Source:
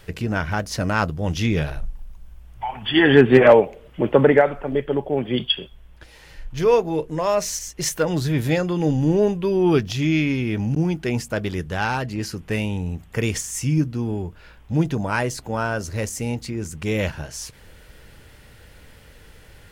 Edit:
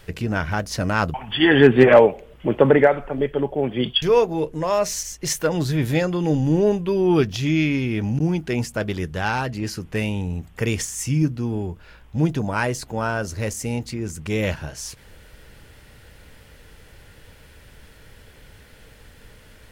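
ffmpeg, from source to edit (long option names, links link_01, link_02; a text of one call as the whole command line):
ffmpeg -i in.wav -filter_complex "[0:a]asplit=3[link_01][link_02][link_03];[link_01]atrim=end=1.142[link_04];[link_02]atrim=start=2.678:end=5.562[link_05];[link_03]atrim=start=6.578[link_06];[link_04][link_05]acrossfade=duration=0.004:curve1=hsin:curve2=hsin[link_07];[link_07][link_06]acrossfade=duration=0.004:curve1=hsin:curve2=hsin" out.wav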